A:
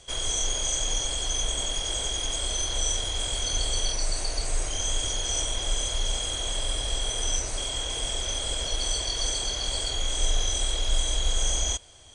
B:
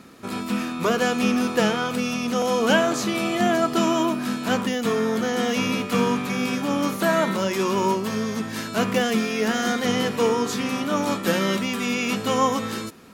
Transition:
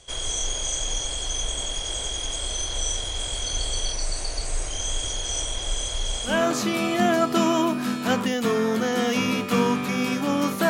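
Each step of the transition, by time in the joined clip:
A
0:06.33: continue with B from 0:02.74, crossfade 0.20 s

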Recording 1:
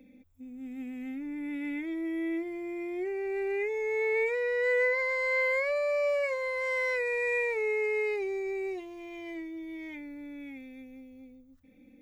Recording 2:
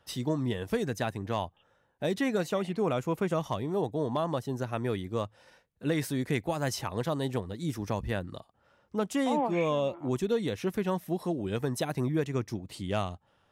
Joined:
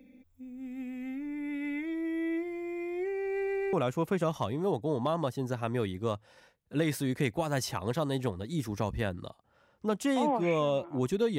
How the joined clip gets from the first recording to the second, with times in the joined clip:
recording 1
0:03.34: stutter in place 0.13 s, 3 plays
0:03.73: continue with recording 2 from 0:02.83

